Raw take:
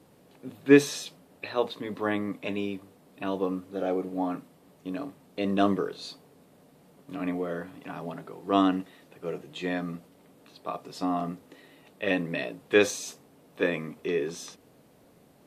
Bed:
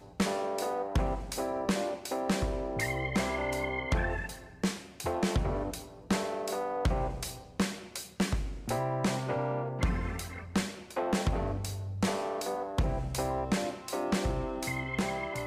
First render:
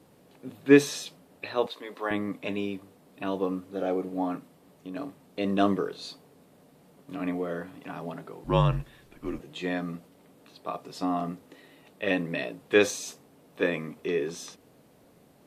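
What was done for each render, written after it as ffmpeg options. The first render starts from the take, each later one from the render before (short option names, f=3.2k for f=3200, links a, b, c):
-filter_complex "[0:a]asettb=1/sr,asplit=3[a][b][c];[a]atrim=end=1.664[d];[b]atrim=start=1.66:end=2.11,asetpts=PTS-STARTPTS,afade=t=in:d=0.004:c=qsin,afade=t=out:st=0.446:d=0.004:c=qsin,highpass=470[e];[c]atrim=start=2.106[f];[d][e]acrossfade=d=0.004:c1=hsin:c2=qsin[g];[g][f]acrossfade=d=0.004:c1=qsin:c2=hsin,asettb=1/sr,asplit=3[h][i][j];[h]atrim=end=4.374[k];[i]atrim=start=4.37:end=4.96,asetpts=PTS-STARTPTS,afade=t=in:d=0.004:c=qsin,afade=t=out:st=0.586:d=0.004:c=qsin,acompressor=threshold=-41dB:ratio=1.5:attack=3.2:release=140:knee=1:detection=peak[l];[j]atrim=start=4.956[m];[k][l]acrossfade=d=0.004:c1=hsin:c2=qsin[n];[n][m]acrossfade=d=0.004:c1=qsin:c2=hsin,asettb=1/sr,asplit=3[o][p][q];[o]atrim=end=8.444[r];[p]atrim=start=8.44:end=9.4,asetpts=PTS-STARTPTS,afade=t=in:d=0.004:c=qsin,afade=t=out:st=0.956:d=0.004:c=qsin,afreqshift=-140[s];[q]atrim=start=9.396[t];[r][s]acrossfade=d=0.004:c1=hsin:c2=qsin[u];[u][t]acrossfade=d=0.004:c1=qsin:c2=hsin"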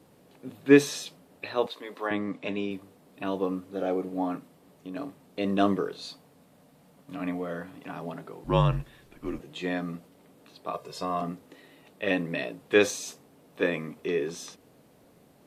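-filter_complex "[0:a]asettb=1/sr,asplit=3[a][b][c];[a]atrim=end=2.074[d];[b]atrim=start=2.07:end=2.71,asetpts=PTS-STARTPTS,afade=t=in:d=0.004:c=qsin,afade=t=out:st=0.636:d=0.004:c=qsin,highpass=100,lowpass=6.9k[e];[c]atrim=start=2.706[f];[d][e]acrossfade=d=0.004:c1=hsin:c2=qsin[g];[g][f]acrossfade=d=0.004:c1=qsin:c2=hsin,asettb=1/sr,asplit=3[h][i][j];[h]atrim=end=6.014[k];[i]atrim=start=6.01:end=7.69,asetpts=PTS-STARTPTS,afade=t=in:d=0.004:c=qsin,afade=t=out:st=1.676:d=0.004:c=qsin,equalizer=f=380:t=o:w=0.33:g=-10[l];[j]atrim=start=7.686[m];[k][l]acrossfade=d=0.004:c1=hsin:c2=qsin[n];[n][m]acrossfade=d=0.004:c1=qsin:c2=hsin,asettb=1/sr,asplit=3[o][p][q];[o]atrim=end=10.734[r];[p]atrim=start=10.73:end=11.22,asetpts=PTS-STARTPTS,afade=t=in:d=0.004:c=qsin,afade=t=out:st=0.486:d=0.004:c=qsin,aecho=1:1:1.9:0.72,atrim=end_sample=21609[s];[q]atrim=start=11.216[t];[r][s]acrossfade=d=0.004:c1=hsin:c2=qsin[u];[u][t]acrossfade=d=0.004:c1=qsin:c2=hsin"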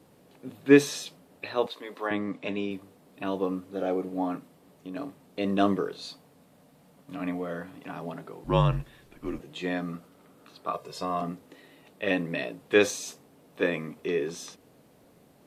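-filter_complex "[0:a]asettb=1/sr,asplit=3[a][b][c];[a]atrim=end=9.914[d];[b]atrim=start=9.91:end=10.73,asetpts=PTS-STARTPTS,afade=t=in:d=0.004:c=qsin,afade=t=out:st=0.816:d=0.004:c=qsin,equalizer=f=1.3k:t=o:w=0.38:g=9[e];[c]atrim=start=10.726[f];[d][e]acrossfade=d=0.004:c1=hsin:c2=qsin[g];[g][f]acrossfade=d=0.004:c1=qsin:c2=hsin"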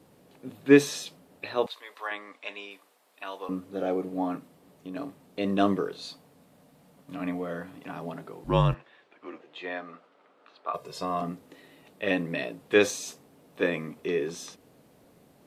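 -filter_complex "[0:a]asettb=1/sr,asplit=3[a][b][c];[a]atrim=end=1.664[d];[b]atrim=start=1.66:end=3.49,asetpts=PTS-STARTPTS,afade=t=in:d=0.004:c=qsin,afade=t=out:st=1.826:d=0.004:c=qsin,highpass=860[e];[c]atrim=start=3.486[f];[d][e]acrossfade=d=0.004:c1=hsin:c2=qsin[g];[g][f]acrossfade=d=0.004:c1=qsin:c2=hsin,asplit=3[h][i][j];[h]afade=t=out:st=8.73:d=0.02[k];[i]highpass=520,lowpass=3.1k,afade=t=in:st=8.73:d=0.02,afade=t=out:st=10.73:d=0.02[l];[j]afade=t=in:st=10.73:d=0.02[m];[k][l][m]amix=inputs=3:normalize=0"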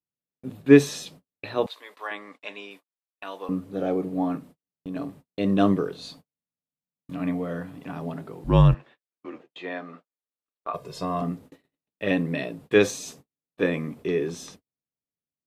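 -af "agate=range=-48dB:threshold=-49dB:ratio=16:detection=peak,lowshelf=f=220:g=11.5"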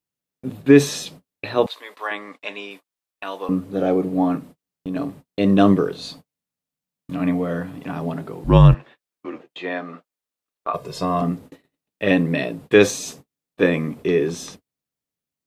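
-af "alimiter=level_in=6.5dB:limit=-1dB:release=50:level=0:latency=1"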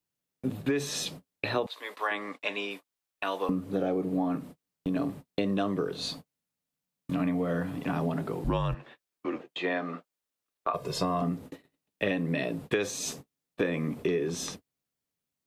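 -filter_complex "[0:a]acrossover=split=430|1300[a][b][c];[a]alimiter=limit=-14dB:level=0:latency=1[d];[d][b][c]amix=inputs=3:normalize=0,acompressor=threshold=-25dB:ratio=10"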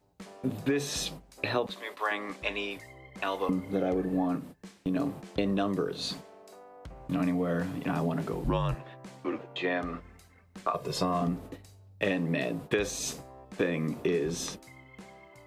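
-filter_complex "[1:a]volume=-17.5dB[a];[0:a][a]amix=inputs=2:normalize=0"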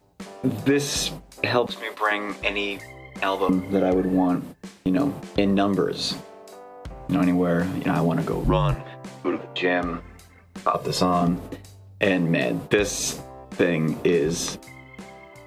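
-af "volume=8dB"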